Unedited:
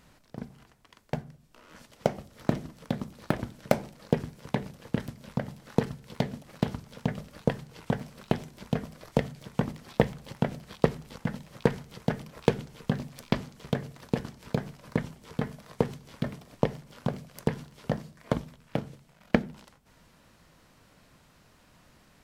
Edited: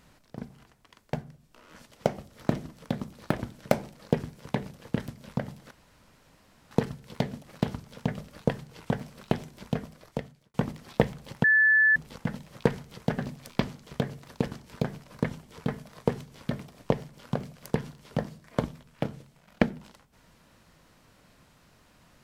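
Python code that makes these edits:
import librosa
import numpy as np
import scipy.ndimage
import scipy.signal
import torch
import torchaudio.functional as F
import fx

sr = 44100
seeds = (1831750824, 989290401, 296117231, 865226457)

y = fx.edit(x, sr, fx.insert_room_tone(at_s=5.71, length_s=1.0),
    fx.fade_out_span(start_s=8.66, length_s=0.88),
    fx.bleep(start_s=10.44, length_s=0.52, hz=1740.0, db=-17.0),
    fx.cut(start_s=12.18, length_s=0.73), tone=tone)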